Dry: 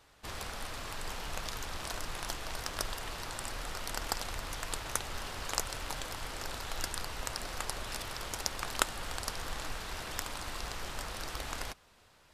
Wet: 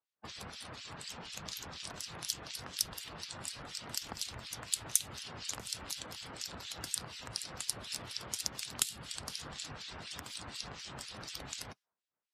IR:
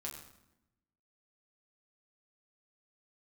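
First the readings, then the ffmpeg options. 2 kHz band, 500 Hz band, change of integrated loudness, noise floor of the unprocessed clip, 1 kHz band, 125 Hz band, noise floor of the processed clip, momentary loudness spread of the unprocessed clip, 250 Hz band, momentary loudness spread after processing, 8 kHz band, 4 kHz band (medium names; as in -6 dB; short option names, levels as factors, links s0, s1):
-7.5 dB, -8.0 dB, -1.5 dB, -63 dBFS, -9.0 dB, -5.0 dB, under -85 dBFS, 5 LU, -3.5 dB, 10 LU, +2.0 dB, -0.5 dB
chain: -filter_complex "[0:a]highpass=140,afftdn=nr=36:nf=-49,acrossover=split=210|3000[s0][s1][s2];[s1]acompressor=threshold=0.00178:ratio=4[s3];[s0][s3][s2]amix=inputs=3:normalize=0,acrossover=split=2000[s4][s5];[s4]aeval=exprs='val(0)*(1-1/2+1/2*cos(2*PI*4.1*n/s))':c=same[s6];[s5]aeval=exprs='val(0)*(1-1/2-1/2*cos(2*PI*4.1*n/s))':c=same[s7];[s6][s7]amix=inputs=2:normalize=0,volume=2.51"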